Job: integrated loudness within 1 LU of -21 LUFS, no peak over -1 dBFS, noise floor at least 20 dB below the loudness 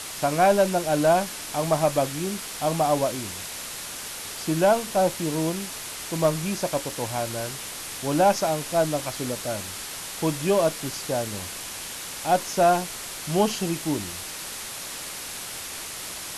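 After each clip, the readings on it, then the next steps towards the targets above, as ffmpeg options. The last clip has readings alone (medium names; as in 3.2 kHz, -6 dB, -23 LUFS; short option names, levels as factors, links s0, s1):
noise floor -36 dBFS; noise floor target -46 dBFS; loudness -25.5 LUFS; peak level -8.5 dBFS; loudness target -21.0 LUFS
-> -af "afftdn=nr=10:nf=-36"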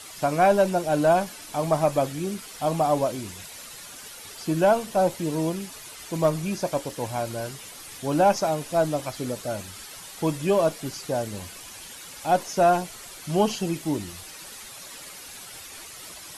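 noise floor -42 dBFS; noise floor target -45 dBFS
-> -af "afftdn=nr=6:nf=-42"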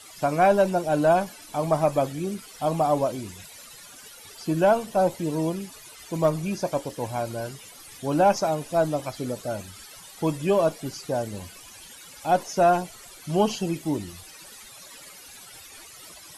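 noise floor -46 dBFS; loudness -25.0 LUFS; peak level -9.0 dBFS; loudness target -21.0 LUFS
-> -af "volume=1.58"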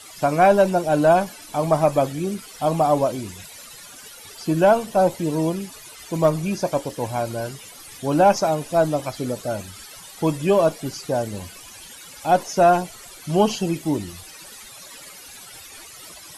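loudness -21.0 LUFS; peak level -5.0 dBFS; noise floor -42 dBFS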